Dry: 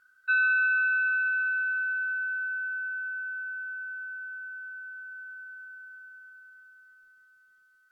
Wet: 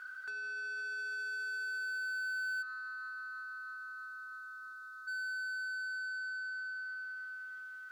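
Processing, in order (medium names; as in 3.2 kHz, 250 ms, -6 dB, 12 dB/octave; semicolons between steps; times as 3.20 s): compressor with a negative ratio -33 dBFS, ratio -0.5; time-frequency box 2.62–5.08 s, 1.3–3.5 kHz -25 dB; overdrive pedal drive 27 dB, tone 2.3 kHz, clips at -26 dBFS; trim -6 dB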